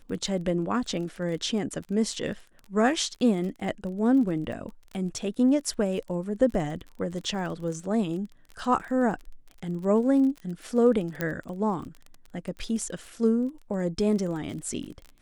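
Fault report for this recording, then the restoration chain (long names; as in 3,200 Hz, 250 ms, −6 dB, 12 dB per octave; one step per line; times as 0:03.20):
surface crackle 30 per second −35 dBFS
0:11.21: click −14 dBFS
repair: click removal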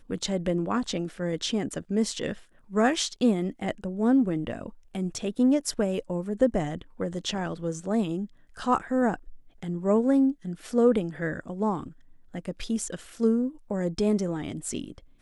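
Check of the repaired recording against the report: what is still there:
none of them is left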